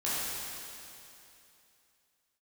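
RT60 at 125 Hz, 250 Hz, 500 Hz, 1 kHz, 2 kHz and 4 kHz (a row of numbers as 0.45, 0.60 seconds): 2.8, 2.8, 2.8, 2.8, 2.8, 2.8 seconds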